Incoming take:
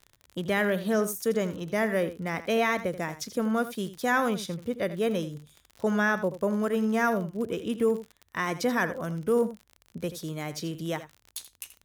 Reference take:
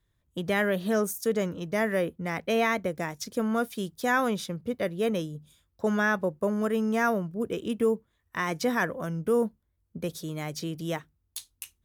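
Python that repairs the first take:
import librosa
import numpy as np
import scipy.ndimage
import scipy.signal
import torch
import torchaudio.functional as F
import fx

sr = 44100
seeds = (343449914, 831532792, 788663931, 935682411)

y = fx.fix_declick_ar(x, sr, threshold=6.5)
y = fx.fix_echo_inverse(y, sr, delay_ms=82, level_db=-13.5)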